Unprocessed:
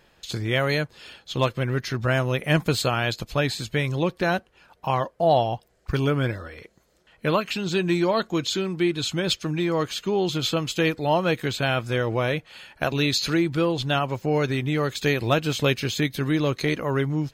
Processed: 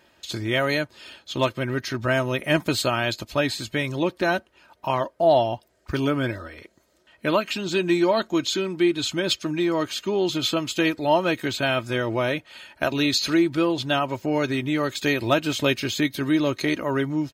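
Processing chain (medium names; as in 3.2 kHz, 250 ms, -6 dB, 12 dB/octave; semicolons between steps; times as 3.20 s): high-pass 82 Hz; comb 3.2 ms, depth 49%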